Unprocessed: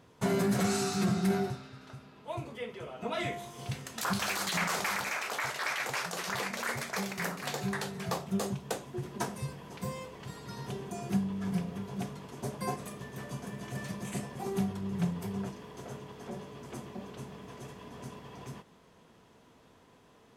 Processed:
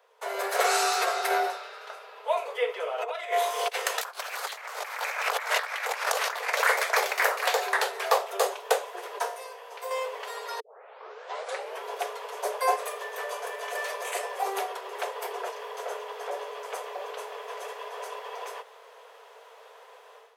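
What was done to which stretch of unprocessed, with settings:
2.98–6.5 negative-ratio compressor -40 dBFS, ratio -0.5
9.19–9.91 resonator 59 Hz, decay 0.48 s, mix 70%
10.6 tape start 1.24 s
whole clip: steep high-pass 430 Hz 96 dB/oct; bell 7000 Hz -6.5 dB 1.8 oct; AGC gain up to 13 dB

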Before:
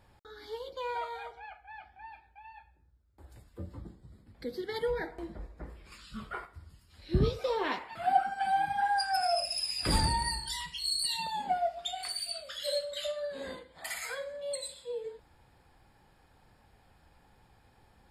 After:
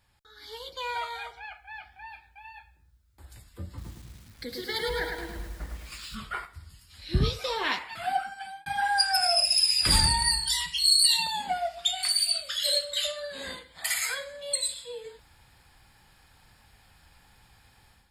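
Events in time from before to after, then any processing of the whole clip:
3.67–6.15 lo-fi delay 0.107 s, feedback 55%, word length 10-bit, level -4 dB
7.92–8.66 fade out
whole clip: AGC gain up to 11 dB; passive tone stack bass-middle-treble 5-5-5; gain +7 dB

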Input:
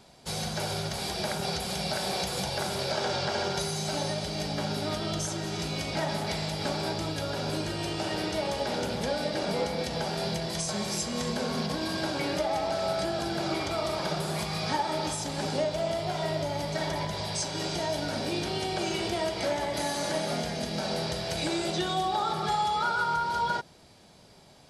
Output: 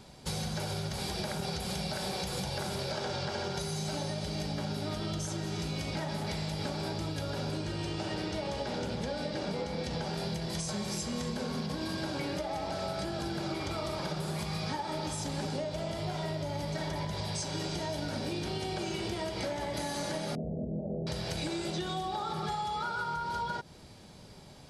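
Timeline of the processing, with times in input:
7.51–10.14 LPF 8600 Hz
20.35–21.07 steep low-pass 650 Hz 48 dB/oct
whole clip: low shelf 230 Hz +7 dB; notch 680 Hz, Q 12; compressor, threshold -33 dBFS; gain +1 dB

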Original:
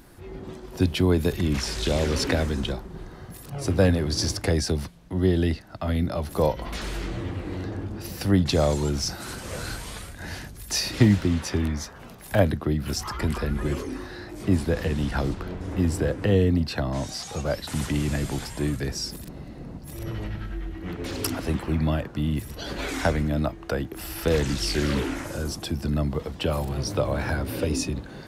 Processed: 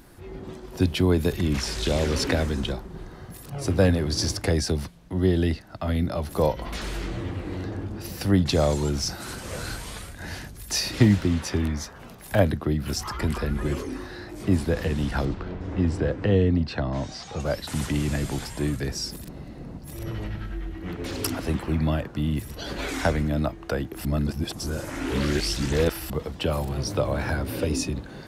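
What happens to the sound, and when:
15.25–17.4 air absorption 110 m
24.05–26.1 reverse

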